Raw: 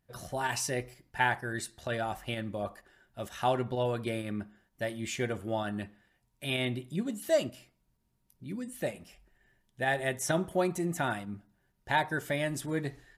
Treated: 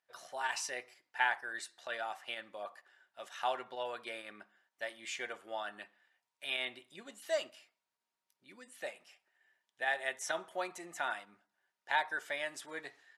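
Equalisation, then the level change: HPF 830 Hz 12 dB/oct; air absorption 55 m; -1.5 dB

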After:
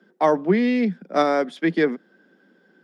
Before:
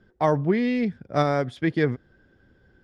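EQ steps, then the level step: steep high-pass 170 Hz 96 dB/oct; +3.5 dB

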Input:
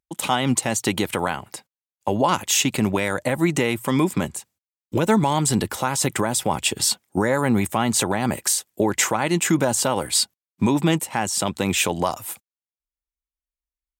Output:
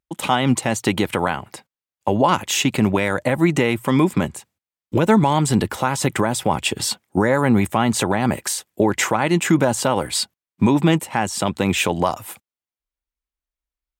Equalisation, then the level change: tone controls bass +1 dB, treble -7 dB; +3.0 dB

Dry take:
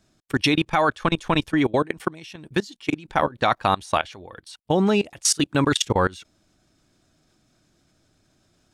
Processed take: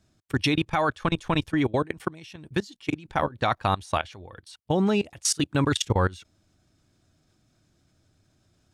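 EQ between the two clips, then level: bell 89 Hz +8.5 dB 1.3 oct; -4.5 dB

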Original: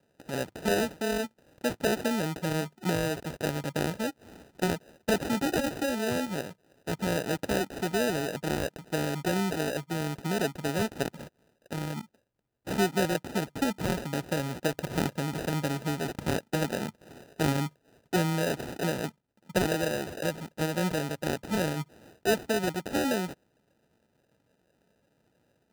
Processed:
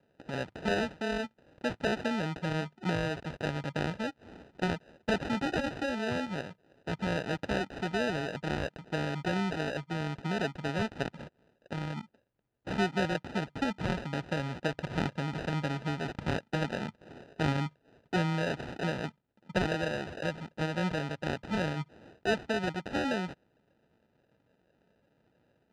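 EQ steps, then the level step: LPF 3600 Hz 12 dB/oct; dynamic EQ 380 Hz, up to -5 dB, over -41 dBFS, Q 0.78; 0.0 dB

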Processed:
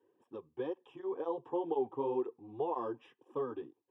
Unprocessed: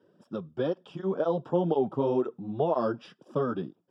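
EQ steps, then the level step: low shelf 440 Hz -10.5 dB; high shelf 2000 Hz -10.5 dB; fixed phaser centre 930 Hz, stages 8; 0.0 dB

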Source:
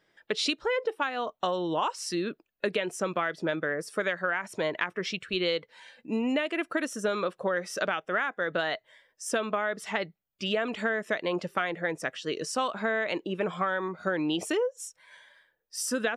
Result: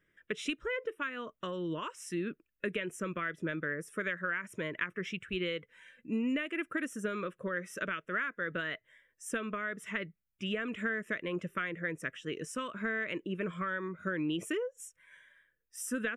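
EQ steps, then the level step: low shelf 100 Hz +10.5 dB; fixed phaser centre 1900 Hz, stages 4; -3.5 dB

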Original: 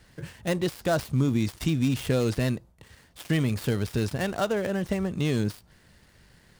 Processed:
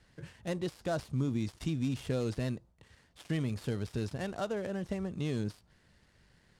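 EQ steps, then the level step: dynamic EQ 2100 Hz, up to -3 dB, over -45 dBFS, Q 0.78; Bessel low-pass 8100 Hz, order 2; -8.0 dB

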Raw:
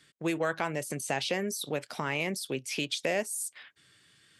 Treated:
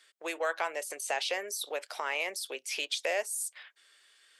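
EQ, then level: HPF 490 Hz 24 dB/oct; 0.0 dB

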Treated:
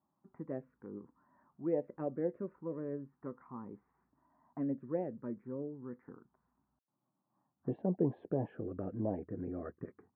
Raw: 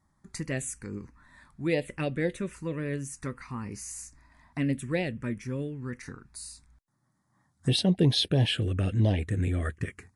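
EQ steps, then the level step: HPF 260 Hz 12 dB/oct; LPF 1100 Hz 24 dB/oct; air absorption 410 m; -3.5 dB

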